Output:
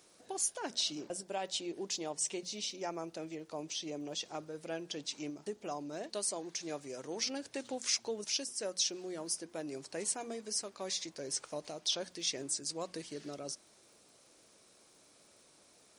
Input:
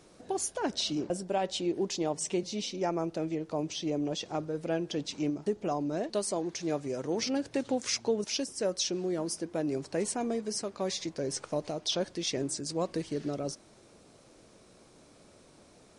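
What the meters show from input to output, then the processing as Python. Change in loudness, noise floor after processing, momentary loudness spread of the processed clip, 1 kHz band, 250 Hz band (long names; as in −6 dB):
−5.0 dB, −64 dBFS, 9 LU, −7.0 dB, −11.0 dB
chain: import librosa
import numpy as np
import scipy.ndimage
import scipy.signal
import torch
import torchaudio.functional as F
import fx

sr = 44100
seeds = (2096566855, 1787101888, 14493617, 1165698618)

y = fx.dmg_crackle(x, sr, seeds[0], per_s=94.0, level_db=-61.0)
y = fx.tilt_eq(y, sr, slope=2.5)
y = fx.hum_notches(y, sr, base_hz=60, count=4)
y = F.gain(torch.from_numpy(y), -6.5).numpy()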